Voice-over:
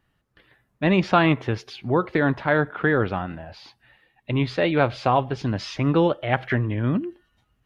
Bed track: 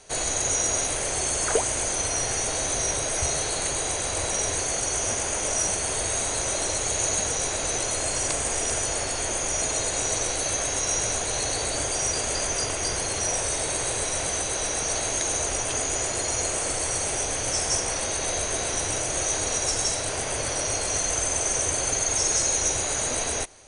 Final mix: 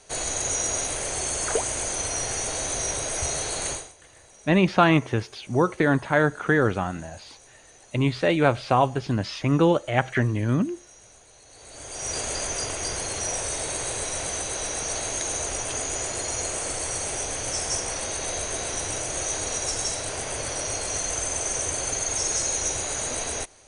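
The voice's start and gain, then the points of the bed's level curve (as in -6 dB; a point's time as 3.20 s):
3.65 s, 0.0 dB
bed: 3.73 s -2 dB
3.95 s -25.5 dB
11.45 s -25.5 dB
12.15 s -2.5 dB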